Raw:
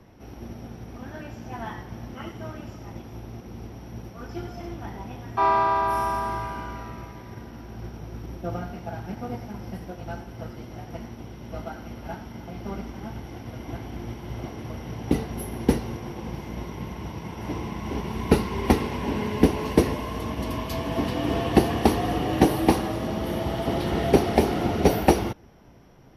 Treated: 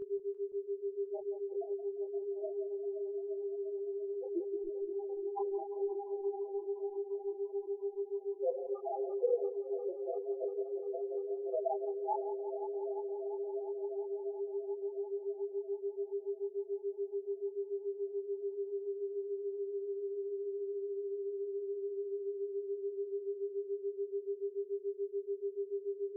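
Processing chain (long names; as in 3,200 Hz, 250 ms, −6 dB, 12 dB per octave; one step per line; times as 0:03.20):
high-shelf EQ 3,700 Hz +9 dB
mains-hum notches 60/120/180/240 Hz
downward compressor 16 to 1, threshold −31 dBFS, peak gain reduction 21 dB
band-pass filter sweep 500 Hz → 7,500 Hz, 0:11.55–0:14.14
log-companded quantiser 2 bits
hum with harmonics 400 Hz, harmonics 9, −40 dBFS −5 dB per octave
spectral peaks only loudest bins 2
on a send: delay that swaps between a low-pass and a high-pass 173 ms, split 930 Hz, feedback 89%, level −10 dB
on the sum: micro pitch shift up and down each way 30 cents
level +9 dB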